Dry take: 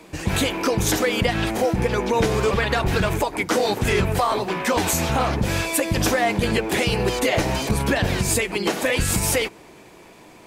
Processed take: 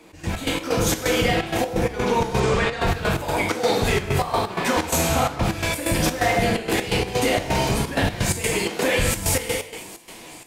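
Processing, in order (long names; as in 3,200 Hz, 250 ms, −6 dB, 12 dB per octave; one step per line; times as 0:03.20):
automatic gain control gain up to 5.5 dB
on a send: delay with a high-pass on its return 670 ms, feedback 73%, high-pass 2,900 Hz, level −21 dB
on the sum: reverb whose tail is shaped and stops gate 400 ms falling, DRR −2 dB
gate pattern "x.x.x.xx.xx" 128 BPM −12 dB
flanger 1.1 Hz, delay 8.3 ms, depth 6.9 ms, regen +82%
soft clipping −2 dBFS, distortion −31 dB
in parallel at 0 dB: downward compressor, threshold −21 dBFS, peak gain reduction 8.5 dB
0:02.40–0:02.81: on the sum: low-pass filter 9,800 Hz 24 dB per octave
level −6.5 dB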